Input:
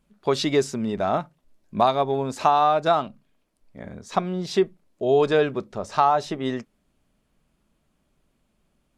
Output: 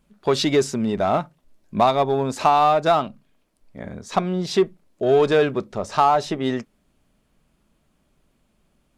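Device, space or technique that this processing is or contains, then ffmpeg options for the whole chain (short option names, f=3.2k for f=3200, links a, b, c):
parallel distortion: -filter_complex "[0:a]asplit=2[a][b];[b]asoftclip=type=hard:threshold=-21dB,volume=-5dB[c];[a][c]amix=inputs=2:normalize=0"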